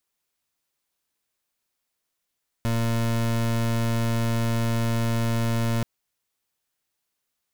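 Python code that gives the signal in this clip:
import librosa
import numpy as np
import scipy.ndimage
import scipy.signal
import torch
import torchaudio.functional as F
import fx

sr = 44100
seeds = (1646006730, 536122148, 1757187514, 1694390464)

y = fx.pulse(sr, length_s=3.18, hz=115.0, level_db=-23.5, duty_pct=29)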